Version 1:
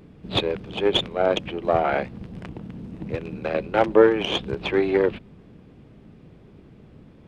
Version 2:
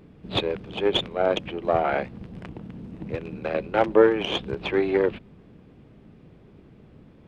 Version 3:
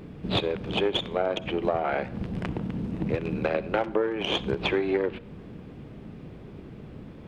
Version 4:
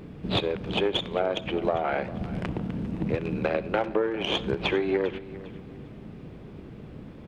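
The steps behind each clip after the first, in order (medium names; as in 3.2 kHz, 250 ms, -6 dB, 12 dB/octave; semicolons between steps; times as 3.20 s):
tone controls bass -1 dB, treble -3 dB; trim -1.5 dB
compression 8:1, threshold -30 dBFS, peak gain reduction 18.5 dB; on a send at -17.5 dB: reverberation RT60 0.75 s, pre-delay 43 ms; on the sum: trim +7.5 dB
feedback delay 401 ms, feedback 29%, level -17 dB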